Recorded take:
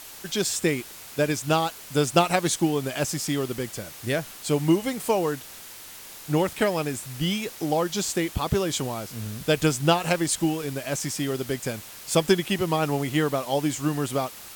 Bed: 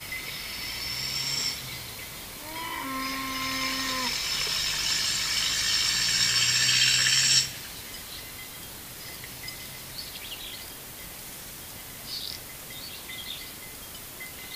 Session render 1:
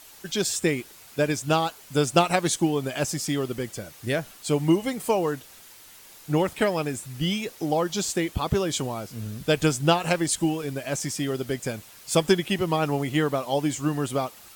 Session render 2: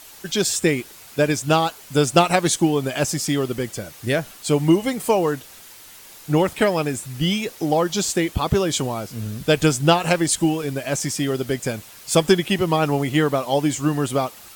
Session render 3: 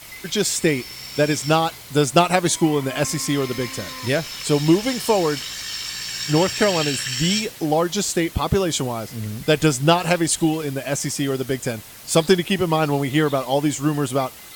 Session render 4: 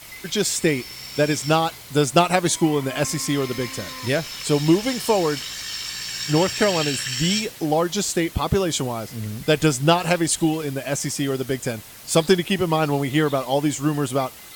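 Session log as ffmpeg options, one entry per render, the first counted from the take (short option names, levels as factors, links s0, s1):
-af "afftdn=nr=7:nf=-43"
-af "acontrast=26"
-filter_complex "[1:a]volume=0.596[s0];[0:a][s0]amix=inputs=2:normalize=0"
-af "volume=0.891"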